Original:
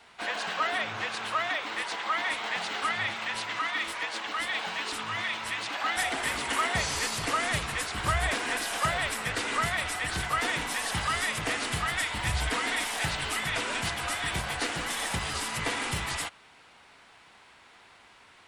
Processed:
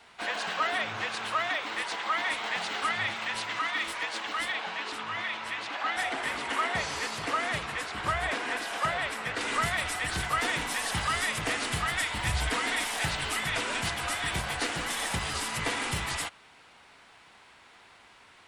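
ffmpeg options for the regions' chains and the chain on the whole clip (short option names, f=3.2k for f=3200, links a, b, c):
-filter_complex "[0:a]asettb=1/sr,asplit=3[a][b][c];[a]atrim=end=4.524[d];[b]atrim=start=4.52:end=9.41,asetpts=PTS-STARTPTS,afade=t=in:d=0.004:c=qsin,afade=t=out:st=4.886:d=0.004:c=qsin,lowpass=f=3.1k:p=1,lowshelf=f=120:g=-11.5[e];[c]atrim=start=9.406[f];[d][e]acrossfade=d=0.004:c1=hsin:c2=qsin[g];[g][f]acrossfade=d=0.004:c1=qsin:c2=hsin"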